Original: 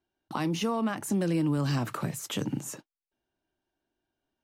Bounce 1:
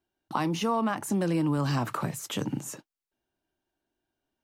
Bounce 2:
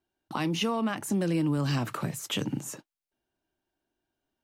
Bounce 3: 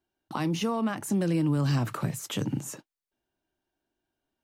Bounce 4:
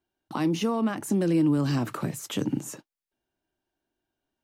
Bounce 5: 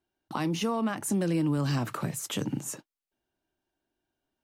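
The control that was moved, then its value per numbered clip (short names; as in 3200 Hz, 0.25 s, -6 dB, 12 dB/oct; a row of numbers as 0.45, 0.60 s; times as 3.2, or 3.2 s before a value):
dynamic EQ, frequency: 960, 2800, 100, 310, 9300 Hz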